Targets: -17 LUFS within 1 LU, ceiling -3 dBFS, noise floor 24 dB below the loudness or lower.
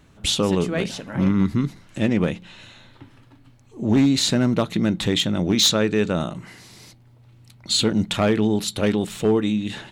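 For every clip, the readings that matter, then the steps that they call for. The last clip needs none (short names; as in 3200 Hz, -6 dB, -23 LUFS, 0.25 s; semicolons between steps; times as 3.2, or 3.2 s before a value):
clipped 0.5%; flat tops at -11.0 dBFS; loudness -21.0 LUFS; peak -11.0 dBFS; loudness target -17.0 LUFS
-> clip repair -11 dBFS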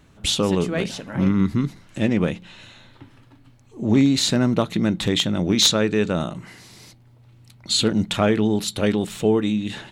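clipped 0.0%; loudness -21.0 LUFS; peak -2.0 dBFS; loudness target -17.0 LUFS
-> gain +4 dB; limiter -3 dBFS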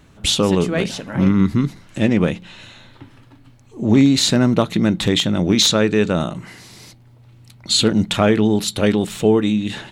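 loudness -17.0 LUFS; peak -3.0 dBFS; noise floor -48 dBFS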